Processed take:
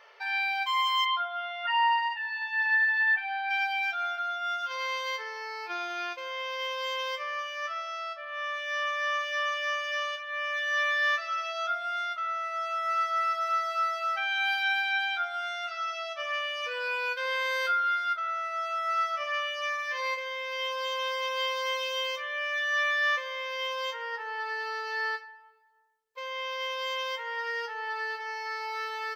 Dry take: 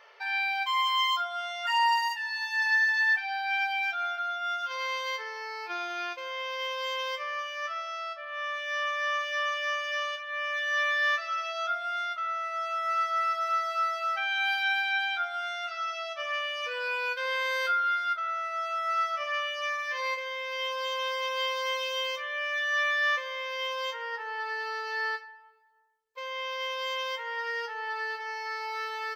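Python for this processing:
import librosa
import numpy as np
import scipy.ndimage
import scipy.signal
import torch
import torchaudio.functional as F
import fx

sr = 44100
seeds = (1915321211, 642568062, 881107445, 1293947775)

y = fx.lowpass(x, sr, hz=3300.0, slope=24, at=(1.04, 3.49), fade=0.02)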